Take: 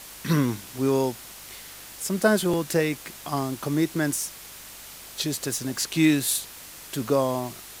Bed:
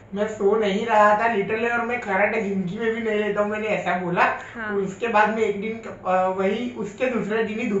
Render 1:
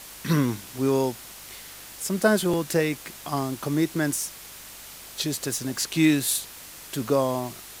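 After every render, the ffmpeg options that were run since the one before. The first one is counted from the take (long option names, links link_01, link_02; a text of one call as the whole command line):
ffmpeg -i in.wav -af anull out.wav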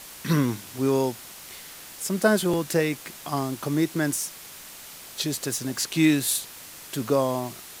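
ffmpeg -i in.wav -af "bandreject=frequency=50:width_type=h:width=4,bandreject=frequency=100:width_type=h:width=4" out.wav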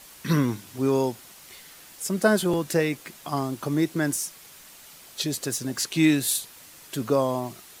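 ffmpeg -i in.wav -af "afftdn=noise_reduction=6:noise_floor=-43" out.wav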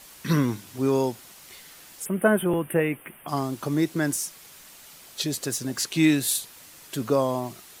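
ffmpeg -i in.wav -filter_complex "[0:a]asplit=3[link_01][link_02][link_03];[link_01]afade=type=out:start_time=2.04:duration=0.02[link_04];[link_02]asuperstop=centerf=5400:order=12:qfactor=0.94,afade=type=in:start_time=2.04:duration=0.02,afade=type=out:start_time=3.27:duration=0.02[link_05];[link_03]afade=type=in:start_time=3.27:duration=0.02[link_06];[link_04][link_05][link_06]amix=inputs=3:normalize=0" out.wav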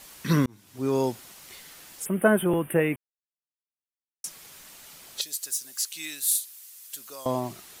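ffmpeg -i in.wav -filter_complex "[0:a]asettb=1/sr,asplit=3[link_01][link_02][link_03];[link_01]atrim=end=5.214[link_04];[link_02]atrim=start=5.21:end=7.26,asetpts=PTS-STARTPTS,afade=type=in:duration=0.004:curve=qsin,afade=type=out:start_time=2.046:duration=0.004:curve=qsin,aderivative[link_05];[link_03]atrim=start=7.256[link_06];[link_04][link_05]acrossfade=duration=0.004:curve1=hsin:curve2=qsin[link_07];[link_07][link_06]acrossfade=duration=0.004:curve1=qsin:curve2=hsin,asplit=4[link_08][link_09][link_10][link_11];[link_08]atrim=end=0.46,asetpts=PTS-STARTPTS,afade=type=out:start_time=0.456:duration=0.004:curve=hsin[link_12];[link_09]atrim=start=0.46:end=2.96,asetpts=PTS-STARTPTS,afade=type=in:duration=0.63,afade=type=out:start_time=2.496:duration=0.004:curve=hsin[link_13];[link_10]atrim=start=2.96:end=4.24,asetpts=PTS-STARTPTS,volume=0[link_14];[link_11]atrim=start=4.24,asetpts=PTS-STARTPTS,afade=type=in:duration=0.004:curve=hsin[link_15];[link_12][link_13][link_14][link_15]concat=n=4:v=0:a=1" out.wav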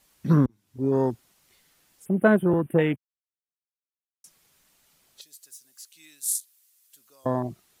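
ffmpeg -i in.wav -af "afwtdn=0.0316,lowshelf=frequency=260:gain=5.5" out.wav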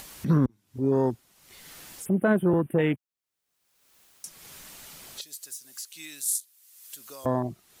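ffmpeg -i in.wav -af "alimiter=limit=-13.5dB:level=0:latency=1:release=20,acompressor=mode=upward:threshold=-30dB:ratio=2.5" out.wav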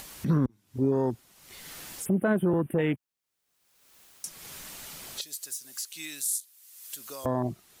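ffmpeg -i in.wav -af "dynaudnorm=framelen=400:gausssize=3:maxgain=3dB,alimiter=limit=-16.5dB:level=0:latency=1:release=109" out.wav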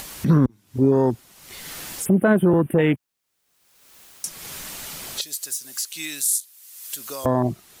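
ffmpeg -i in.wav -af "volume=8dB" out.wav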